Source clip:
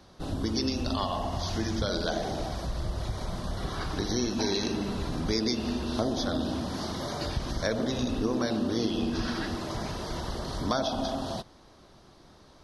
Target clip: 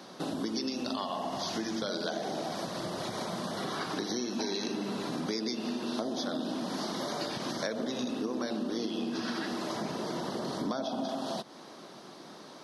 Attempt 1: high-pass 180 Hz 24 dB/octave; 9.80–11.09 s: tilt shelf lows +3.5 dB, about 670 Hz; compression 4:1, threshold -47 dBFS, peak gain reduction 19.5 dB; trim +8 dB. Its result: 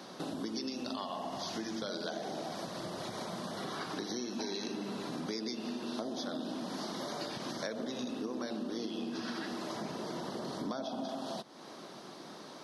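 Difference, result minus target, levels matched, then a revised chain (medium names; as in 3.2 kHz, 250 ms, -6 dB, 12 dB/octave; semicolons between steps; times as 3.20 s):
compression: peak gain reduction +4.5 dB
high-pass 180 Hz 24 dB/octave; 9.80–11.09 s: tilt shelf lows +3.5 dB, about 670 Hz; compression 4:1, threshold -41 dBFS, peak gain reduction 15 dB; trim +8 dB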